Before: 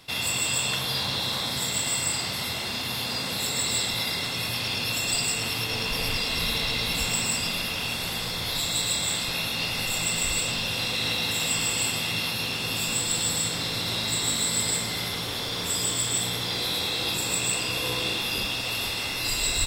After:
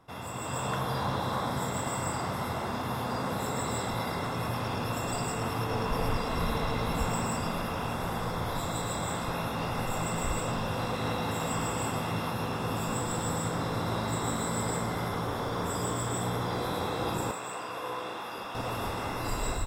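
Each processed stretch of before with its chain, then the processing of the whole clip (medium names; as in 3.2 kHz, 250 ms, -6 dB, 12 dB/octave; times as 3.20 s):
17.31–18.55 s: high-pass 1 kHz 6 dB/octave + treble shelf 3.4 kHz -7 dB
whole clip: resonant high shelf 1.8 kHz -14 dB, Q 1.5; band-stop 4.4 kHz, Q 5.3; level rider gain up to 7 dB; trim -4.5 dB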